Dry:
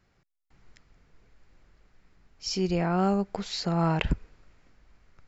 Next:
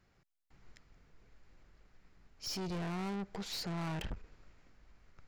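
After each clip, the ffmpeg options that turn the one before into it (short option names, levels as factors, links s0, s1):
-af "aeval=exprs='(tanh(56.2*val(0)+0.4)-tanh(0.4))/56.2':c=same,volume=0.841"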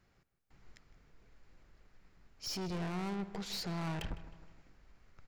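-filter_complex "[0:a]asplit=2[s0][s1];[s1]adelay=156,lowpass=f=3000:p=1,volume=0.2,asplit=2[s2][s3];[s3]adelay=156,lowpass=f=3000:p=1,volume=0.51,asplit=2[s4][s5];[s5]adelay=156,lowpass=f=3000:p=1,volume=0.51,asplit=2[s6][s7];[s7]adelay=156,lowpass=f=3000:p=1,volume=0.51,asplit=2[s8][s9];[s9]adelay=156,lowpass=f=3000:p=1,volume=0.51[s10];[s0][s2][s4][s6][s8][s10]amix=inputs=6:normalize=0"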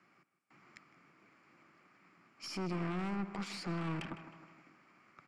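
-filter_complex "[0:a]acrossover=split=280[s0][s1];[s1]acompressor=threshold=0.00501:ratio=2.5[s2];[s0][s2]amix=inputs=2:normalize=0,highpass=f=160:w=0.5412,highpass=f=160:w=1.3066,equalizer=f=320:t=q:w=4:g=6,equalizer=f=460:t=q:w=4:g=-7,equalizer=f=1200:t=q:w=4:g=10,equalizer=f=2300:t=q:w=4:g=8,equalizer=f=3800:t=q:w=4:g=-9,equalizer=f=6300:t=q:w=4:g=-7,lowpass=f=9200:w=0.5412,lowpass=f=9200:w=1.3066,aeval=exprs='(tanh(50.1*val(0)+0.6)-tanh(0.6))/50.1':c=same,volume=2"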